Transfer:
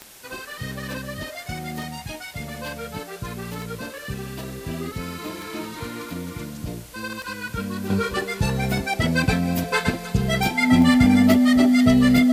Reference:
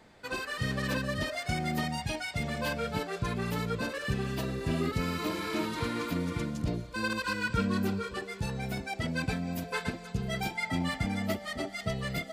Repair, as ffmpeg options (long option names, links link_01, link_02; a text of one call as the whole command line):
ffmpeg -i in.wav -af "adeclick=threshold=4,bandreject=frequency=250:width=30,afwtdn=0.0056,asetnsamples=nb_out_samples=441:pad=0,asendcmd='7.9 volume volume -11.5dB',volume=0dB" out.wav